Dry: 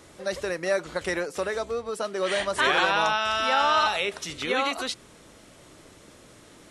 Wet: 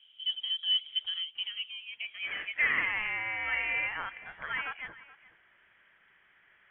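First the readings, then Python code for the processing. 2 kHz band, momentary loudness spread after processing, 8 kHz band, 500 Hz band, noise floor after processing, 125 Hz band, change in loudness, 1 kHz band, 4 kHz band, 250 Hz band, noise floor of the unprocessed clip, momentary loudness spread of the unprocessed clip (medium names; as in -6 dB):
-3.5 dB, 12 LU, under -40 dB, -26.0 dB, -65 dBFS, -13.5 dB, -6.0 dB, -17.0 dB, -1.0 dB, -20.5 dB, -52 dBFS, 10 LU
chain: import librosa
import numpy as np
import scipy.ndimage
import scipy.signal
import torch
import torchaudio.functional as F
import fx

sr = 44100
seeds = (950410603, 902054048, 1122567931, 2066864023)

y = fx.filter_sweep_bandpass(x, sr, from_hz=530.0, to_hz=1800.0, start_s=0.97, end_s=2.8, q=3.9)
y = fx.freq_invert(y, sr, carrier_hz=3600)
y = y + 10.0 ** (-18.5 / 20.0) * np.pad(y, (int(424 * sr / 1000.0), 0))[:len(y)]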